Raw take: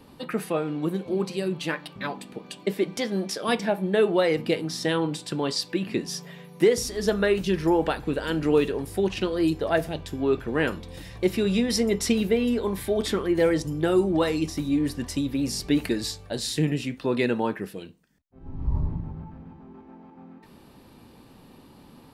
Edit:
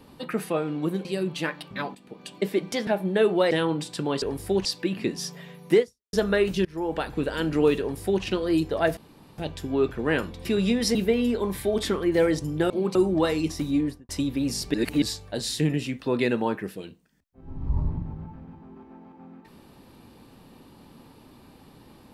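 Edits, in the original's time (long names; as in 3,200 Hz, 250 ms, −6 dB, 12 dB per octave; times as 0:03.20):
0:01.05–0:01.30: move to 0:13.93
0:02.20–0:02.60: fade in, from −13.5 dB
0:03.12–0:03.65: remove
0:04.29–0:04.84: remove
0:06.70–0:07.03: fade out exponential
0:07.55–0:08.05: fade in, from −23 dB
0:08.70–0:09.13: duplicate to 0:05.55
0:09.87: splice in room tone 0.41 s
0:10.94–0:11.33: remove
0:11.83–0:12.18: remove
0:14.74–0:15.07: fade out and dull
0:15.72–0:16.00: reverse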